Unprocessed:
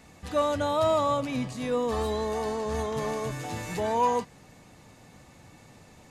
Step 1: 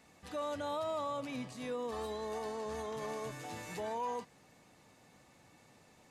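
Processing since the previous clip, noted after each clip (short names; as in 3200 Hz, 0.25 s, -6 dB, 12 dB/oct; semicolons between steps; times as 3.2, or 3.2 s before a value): notch 6800 Hz, Q 29; limiter -21.5 dBFS, peak gain reduction 6 dB; low shelf 130 Hz -11.5 dB; gain -8 dB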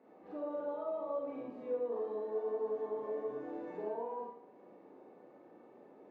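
compressor 1.5:1, threshold -58 dBFS, peak gain reduction 8.5 dB; ladder band-pass 430 Hz, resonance 45%; Schroeder reverb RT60 0.75 s, combs from 30 ms, DRR -5.5 dB; gain +13 dB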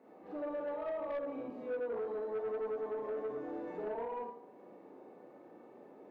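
soft clip -35 dBFS, distortion -14 dB; gain +2.5 dB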